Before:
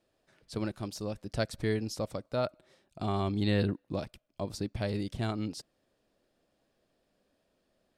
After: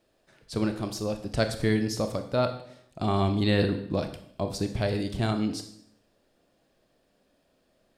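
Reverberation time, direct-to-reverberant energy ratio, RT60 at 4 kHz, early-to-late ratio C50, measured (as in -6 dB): 0.70 s, 7.0 dB, 0.65 s, 10.5 dB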